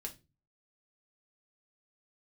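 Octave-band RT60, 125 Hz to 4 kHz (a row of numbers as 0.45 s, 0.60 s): 0.55 s, 0.45 s, 0.35 s, 0.20 s, 0.25 s, 0.25 s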